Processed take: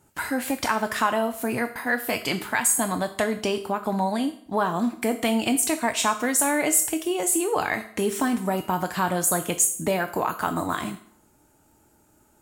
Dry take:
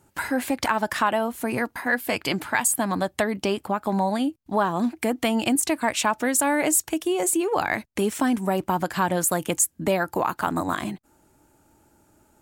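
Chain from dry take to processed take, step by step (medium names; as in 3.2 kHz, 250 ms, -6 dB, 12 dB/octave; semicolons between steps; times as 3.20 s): on a send: tilt EQ +3 dB/octave + reverberation RT60 0.65 s, pre-delay 4 ms, DRR 6.5 dB; on the sum: trim -1.5 dB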